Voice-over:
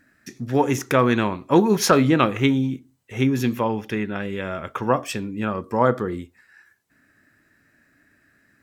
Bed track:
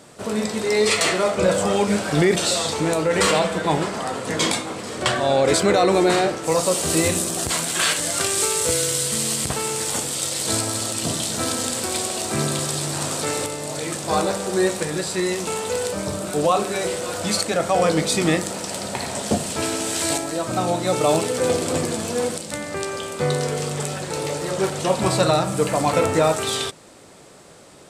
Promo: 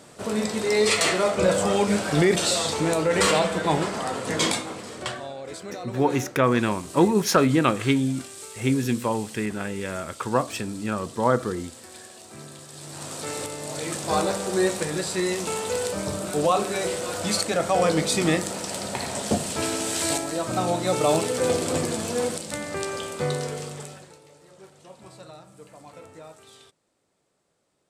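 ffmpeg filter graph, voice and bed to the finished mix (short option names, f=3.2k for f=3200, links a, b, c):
-filter_complex "[0:a]adelay=5450,volume=-2.5dB[a];[1:a]volume=15dB,afade=t=out:st=4.44:d=0.9:silence=0.133352,afade=t=in:st=12.69:d=1.27:silence=0.141254,afade=t=out:st=22.99:d=1.2:silence=0.0630957[b];[a][b]amix=inputs=2:normalize=0"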